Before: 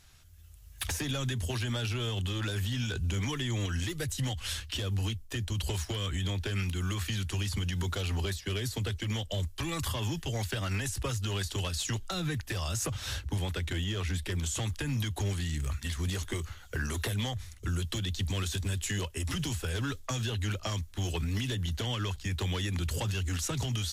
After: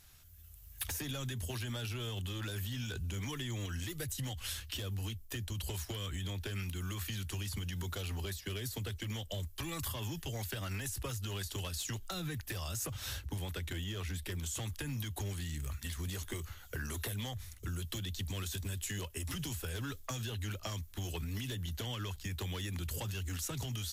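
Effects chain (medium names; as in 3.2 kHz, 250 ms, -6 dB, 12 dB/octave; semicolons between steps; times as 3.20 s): peaking EQ 14 kHz +13 dB 0.6 oct; compression 2:1, threshold -36 dBFS, peak gain reduction 5.5 dB; trim -3 dB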